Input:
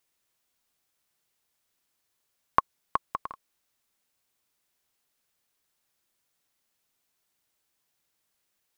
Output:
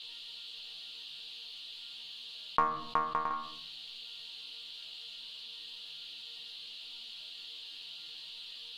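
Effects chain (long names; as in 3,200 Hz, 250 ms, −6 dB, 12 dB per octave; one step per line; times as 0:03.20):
resonators tuned to a chord D#3 fifth, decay 0.28 s
noise in a band 2,800–4,500 Hz −78 dBFS
high-frequency loss of the air 54 metres
on a send at −14.5 dB: convolution reverb RT60 0.55 s, pre-delay 7 ms
on the sum: envelope flattener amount 50%
level +9.5 dB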